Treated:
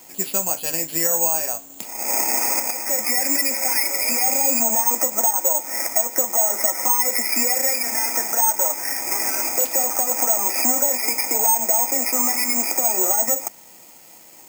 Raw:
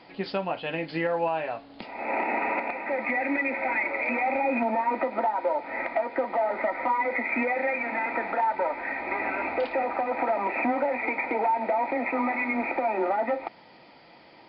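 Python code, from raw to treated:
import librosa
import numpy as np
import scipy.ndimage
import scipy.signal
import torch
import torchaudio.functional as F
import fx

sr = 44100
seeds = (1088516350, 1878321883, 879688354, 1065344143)

y = (np.kron(x[::6], np.eye(6)[0]) * 6)[:len(x)]
y = y * 10.0 ** (-1.0 / 20.0)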